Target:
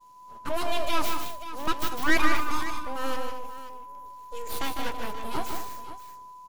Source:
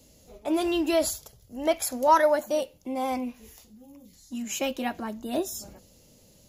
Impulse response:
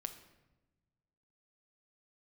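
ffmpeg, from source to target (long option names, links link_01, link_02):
-filter_complex "[0:a]aeval=exprs='abs(val(0))':channel_layout=same,aeval=exprs='val(0)+0.00708*sin(2*PI*1000*n/s)':channel_layout=same,agate=range=-33dB:threshold=-40dB:ratio=3:detection=peak,asplit=2[link_01][link_02];[link_02]aecho=0:1:153|195|224|531:0.501|0.133|0.2|0.211[link_03];[link_01][link_03]amix=inputs=2:normalize=0"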